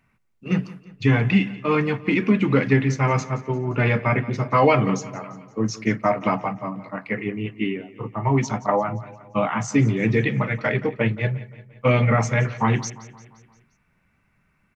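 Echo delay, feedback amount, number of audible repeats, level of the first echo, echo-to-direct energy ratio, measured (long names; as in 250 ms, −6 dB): 174 ms, 54%, 4, −18.0 dB, −16.5 dB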